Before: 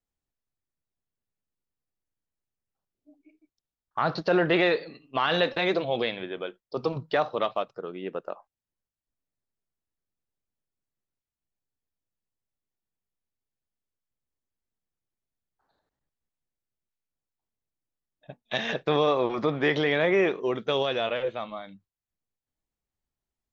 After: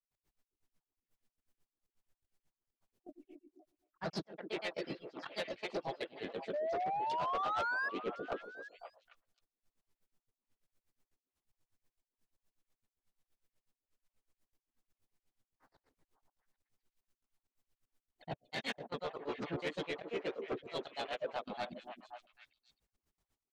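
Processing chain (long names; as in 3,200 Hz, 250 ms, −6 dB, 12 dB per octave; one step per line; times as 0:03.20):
mains-hum notches 60/120/180/240/300/360/420/480/540/600 Hz
brickwall limiter −22 dBFS, peak gain reduction 10 dB
reversed playback
downward compressor 5 to 1, threshold −41 dBFS, peak gain reduction 13 dB
reversed playback
gate pattern ".x.xxx.xxxx" 194 BPM −24 dB
granular cloud 80 ms, grains 8.2 per second, spray 11 ms, pitch spread up and down by 0 semitones
pitch-shifted copies added −3 semitones −15 dB, +3 semitones −2 dB, +4 semitones −16 dB
sound drawn into the spectrogram rise, 0:06.53–0:07.89, 580–1,700 Hz −43 dBFS
soft clipping −40 dBFS, distortion −13 dB
echo through a band-pass that steps 265 ms, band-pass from 330 Hz, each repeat 1.4 octaves, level −5 dB
level +9 dB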